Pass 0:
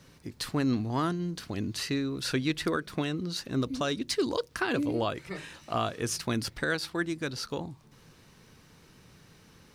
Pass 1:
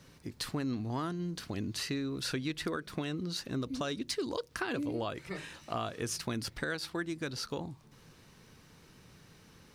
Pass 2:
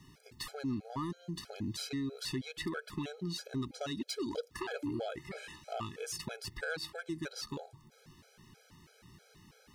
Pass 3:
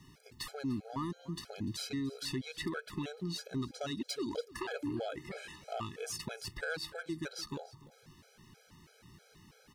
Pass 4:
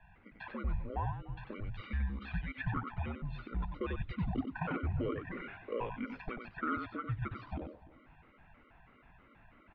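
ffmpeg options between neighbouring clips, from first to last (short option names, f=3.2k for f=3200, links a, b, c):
-af "acompressor=threshold=-31dB:ratio=3,volume=-1.5dB"
-af "asoftclip=type=tanh:threshold=-27.5dB,afftfilt=real='re*gt(sin(2*PI*3.1*pts/sr)*(1-2*mod(floor(b*sr/1024/430),2)),0)':imag='im*gt(sin(2*PI*3.1*pts/sr)*(1-2*mod(floor(b*sr/1024/430),2)),0)':win_size=1024:overlap=0.75,volume=1dB"
-af "aecho=1:1:295:0.106"
-filter_complex "[0:a]asplit=2[a][b];[b]adelay=93.29,volume=-6dB,highshelf=f=4k:g=-2.1[c];[a][c]amix=inputs=2:normalize=0,highpass=f=200:t=q:w=0.5412,highpass=f=200:t=q:w=1.307,lowpass=f=2.7k:t=q:w=0.5176,lowpass=f=2.7k:t=q:w=0.7071,lowpass=f=2.7k:t=q:w=1.932,afreqshift=-210,volume=2.5dB"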